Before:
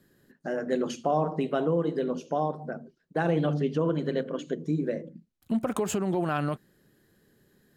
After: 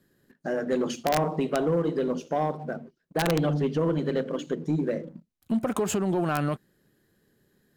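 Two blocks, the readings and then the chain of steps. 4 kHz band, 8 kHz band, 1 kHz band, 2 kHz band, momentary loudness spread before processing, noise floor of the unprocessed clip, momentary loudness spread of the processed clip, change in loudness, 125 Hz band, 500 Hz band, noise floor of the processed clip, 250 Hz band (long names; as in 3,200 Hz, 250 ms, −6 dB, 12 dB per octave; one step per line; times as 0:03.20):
+5.0 dB, +4.0 dB, +1.0 dB, +2.5 dB, 10 LU, −70 dBFS, 9 LU, +1.5 dB, +1.5 dB, +1.5 dB, −73 dBFS, +1.5 dB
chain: wrap-around overflow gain 15.5 dB
leveller curve on the samples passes 1
level −1 dB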